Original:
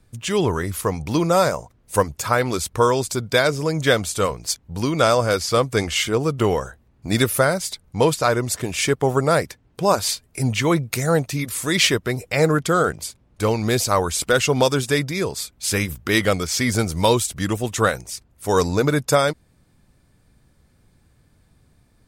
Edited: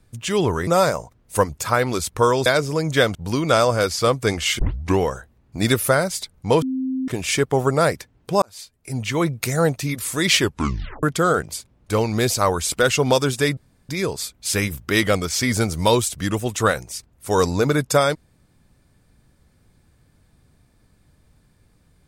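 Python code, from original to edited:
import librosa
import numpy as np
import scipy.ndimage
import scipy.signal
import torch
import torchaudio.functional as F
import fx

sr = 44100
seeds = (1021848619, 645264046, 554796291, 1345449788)

y = fx.edit(x, sr, fx.cut(start_s=0.67, length_s=0.59),
    fx.cut(start_s=3.05, length_s=0.31),
    fx.cut(start_s=4.05, length_s=0.6),
    fx.tape_start(start_s=6.09, length_s=0.4),
    fx.bleep(start_s=8.12, length_s=0.46, hz=261.0, db=-21.0),
    fx.fade_in_span(start_s=9.92, length_s=1.01),
    fx.tape_stop(start_s=11.9, length_s=0.63),
    fx.insert_room_tone(at_s=15.07, length_s=0.32), tone=tone)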